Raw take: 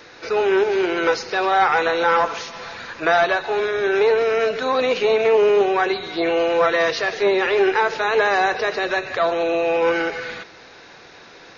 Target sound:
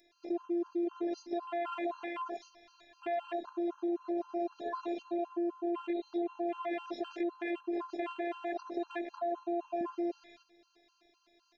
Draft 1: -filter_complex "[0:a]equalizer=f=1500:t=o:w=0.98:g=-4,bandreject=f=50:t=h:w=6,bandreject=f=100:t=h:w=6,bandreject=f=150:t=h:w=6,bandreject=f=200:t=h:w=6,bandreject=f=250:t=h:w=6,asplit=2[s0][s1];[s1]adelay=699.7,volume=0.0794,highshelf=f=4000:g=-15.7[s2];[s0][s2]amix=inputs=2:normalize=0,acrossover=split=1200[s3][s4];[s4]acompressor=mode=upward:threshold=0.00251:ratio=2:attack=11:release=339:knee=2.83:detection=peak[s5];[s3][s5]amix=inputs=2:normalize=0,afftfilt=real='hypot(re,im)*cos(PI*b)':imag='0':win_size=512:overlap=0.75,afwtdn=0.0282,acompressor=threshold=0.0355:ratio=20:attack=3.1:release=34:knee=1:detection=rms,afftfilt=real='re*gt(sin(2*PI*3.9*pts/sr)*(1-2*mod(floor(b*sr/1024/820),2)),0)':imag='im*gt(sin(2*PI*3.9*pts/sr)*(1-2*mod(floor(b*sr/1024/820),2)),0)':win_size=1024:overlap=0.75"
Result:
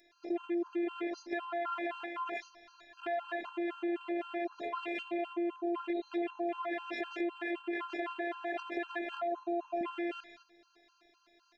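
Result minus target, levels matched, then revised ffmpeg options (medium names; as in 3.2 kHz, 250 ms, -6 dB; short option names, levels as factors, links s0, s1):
2 kHz band +7.0 dB
-filter_complex "[0:a]equalizer=f=1500:t=o:w=0.98:g=-12,bandreject=f=50:t=h:w=6,bandreject=f=100:t=h:w=6,bandreject=f=150:t=h:w=6,bandreject=f=200:t=h:w=6,bandreject=f=250:t=h:w=6,asplit=2[s0][s1];[s1]adelay=699.7,volume=0.0794,highshelf=f=4000:g=-15.7[s2];[s0][s2]amix=inputs=2:normalize=0,acrossover=split=1200[s3][s4];[s4]acompressor=mode=upward:threshold=0.00251:ratio=2:attack=11:release=339:knee=2.83:detection=peak[s5];[s3][s5]amix=inputs=2:normalize=0,afftfilt=real='hypot(re,im)*cos(PI*b)':imag='0':win_size=512:overlap=0.75,afwtdn=0.0282,acompressor=threshold=0.0355:ratio=20:attack=3.1:release=34:knee=1:detection=rms,afftfilt=real='re*gt(sin(2*PI*3.9*pts/sr)*(1-2*mod(floor(b*sr/1024/820),2)),0)':imag='im*gt(sin(2*PI*3.9*pts/sr)*(1-2*mod(floor(b*sr/1024/820),2)),0)':win_size=1024:overlap=0.75"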